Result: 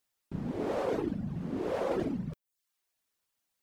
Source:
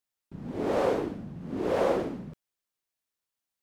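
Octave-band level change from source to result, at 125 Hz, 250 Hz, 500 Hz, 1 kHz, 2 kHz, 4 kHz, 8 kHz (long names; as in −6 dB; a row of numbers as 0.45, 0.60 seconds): +1.5 dB, −1.0 dB, −5.5 dB, −6.0 dB, −5.5 dB, −5.5 dB, can't be measured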